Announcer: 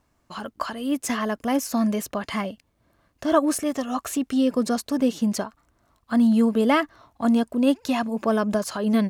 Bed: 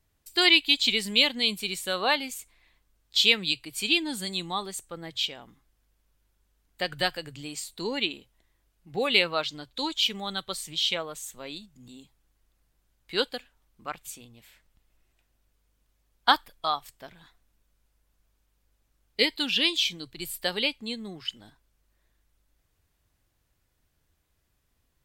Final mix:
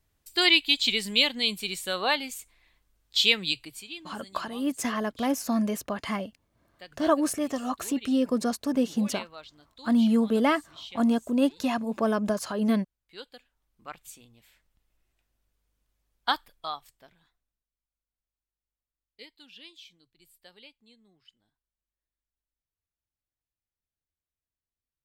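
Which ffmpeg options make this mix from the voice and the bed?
ffmpeg -i stem1.wav -i stem2.wav -filter_complex "[0:a]adelay=3750,volume=-3.5dB[link_01];[1:a]volume=10.5dB,afade=type=out:start_time=3.64:duration=0.21:silence=0.158489,afade=type=in:start_time=13.22:duration=0.71:silence=0.266073,afade=type=out:start_time=16.48:duration=1.16:silence=0.112202[link_02];[link_01][link_02]amix=inputs=2:normalize=0" out.wav

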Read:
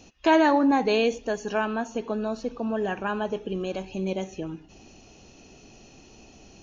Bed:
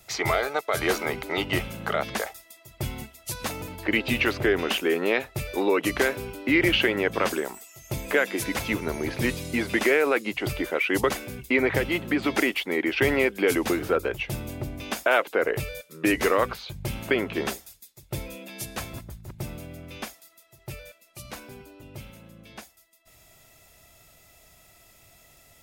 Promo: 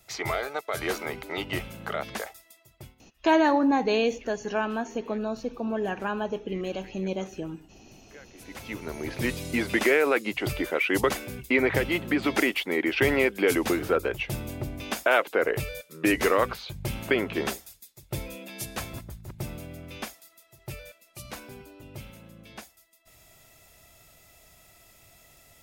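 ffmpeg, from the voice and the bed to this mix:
ffmpeg -i stem1.wav -i stem2.wav -filter_complex "[0:a]adelay=3000,volume=-1.5dB[link_01];[1:a]volume=22dB,afade=type=out:start_time=2.49:duration=0.46:silence=0.0749894,afade=type=in:start_time=8.33:duration=1.19:silence=0.0446684[link_02];[link_01][link_02]amix=inputs=2:normalize=0" out.wav

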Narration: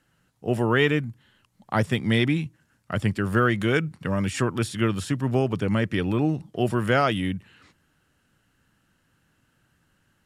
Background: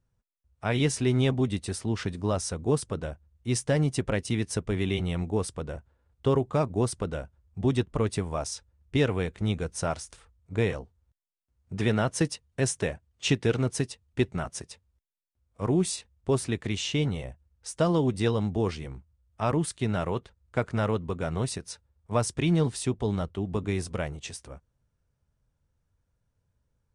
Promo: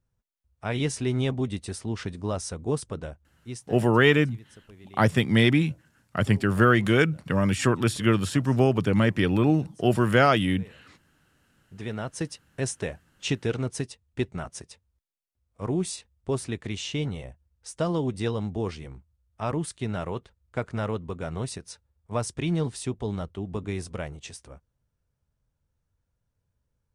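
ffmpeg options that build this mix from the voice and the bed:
ffmpeg -i stem1.wav -i stem2.wav -filter_complex "[0:a]adelay=3250,volume=2dB[link_01];[1:a]volume=17.5dB,afade=type=out:start_time=3.03:duration=0.74:silence=0.1,afade=type=in:start_time=11.33:duration=1.29:silence=0.105925[link_02];[link_01][link_02]amix=inputs=2:normalize=0" out.wav

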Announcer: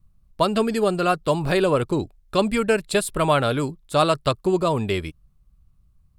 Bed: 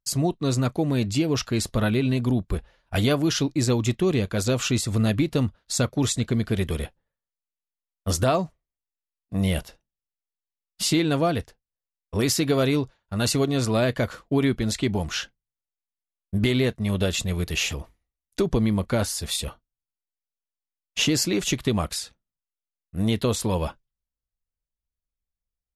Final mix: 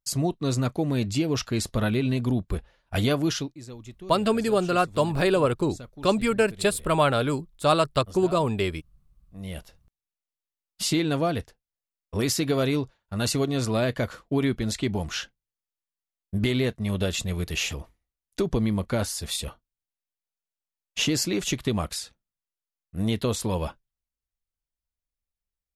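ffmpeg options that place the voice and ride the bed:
ffmpeg -i stem1.wav -i stem2.wav -filter_complex "[0:a]adelay=3700,volume=-2dB[link_01];[1:a]volume=15dB,afade=type=out:start_time=3.28:duration=0.28:silence=0.133352,afade=type=in:start_time=9.33:duration=0.77:silence=0.141254[link_02];[link_01][link_02]amix=inputs=2:normalize=0" out.wav

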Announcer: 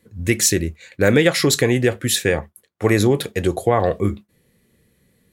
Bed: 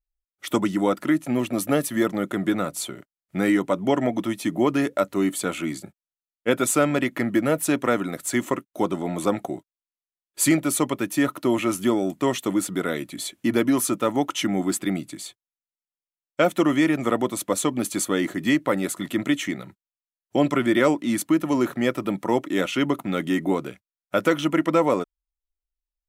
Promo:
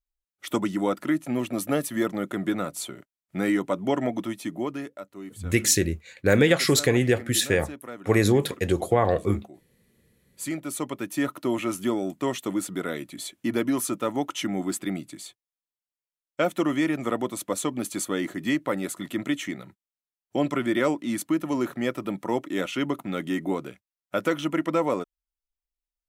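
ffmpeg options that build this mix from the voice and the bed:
ffmpeg -i stem1.wav -i stem2.wav -filter_complex "[0:a]adelay=5250,volume=-4dB[link_01];[1:a]volume=9.5dB,afade=type=out:start_time=4.13:duration=0.87:silence=0.199526,afade=type=in:start_time=10.26:duration=0.97:silence=0.223872[link_02];[link_01][link_02]amix=inputs=2:normalize=0" out.wav

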